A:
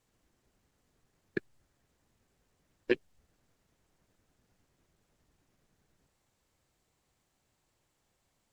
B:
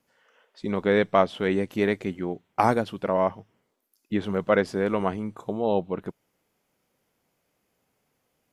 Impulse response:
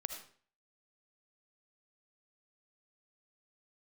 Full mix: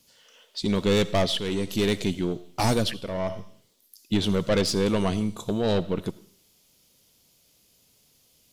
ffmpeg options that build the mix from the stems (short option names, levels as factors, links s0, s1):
-filter_complex "[0:a]highpass=f=1900:t=q:w=3.4,volume=0.237,asplit=2[s0][s1];[1:a]highshelf=f=2600:t=q:w=1.5:g=13.5,asoftclip=type=tanh:threshold=0.0891,volume=1,asplit=2[s2][s3];[s3]volume=0.422[s4];[s1]apad=whole_len=376171[s5];[s2][s5]sidechaincompress=threshold=0.00316:ratio=8:attack=16:release=609[s6];[2:a]atrim=start_sample=2205[s7];[s4][s7]afir=irnorm=-1:irlink=0[s8];[s0][s6][s8]amix=inputs=3:normalize=0,lowshelf=f=140:g=10.5,bandreject=f=790:w=12"